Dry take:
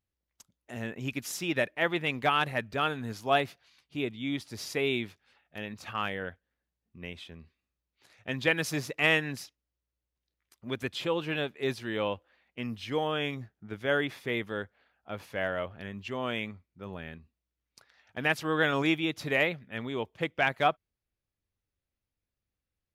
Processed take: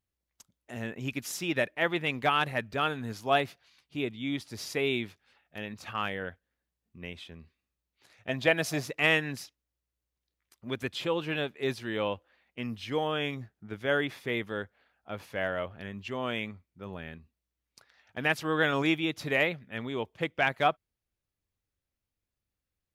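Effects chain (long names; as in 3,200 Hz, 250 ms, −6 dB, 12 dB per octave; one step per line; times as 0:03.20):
0:08.29–0:08.83: parametric band 670 Hz +12 dB 0.3 octaves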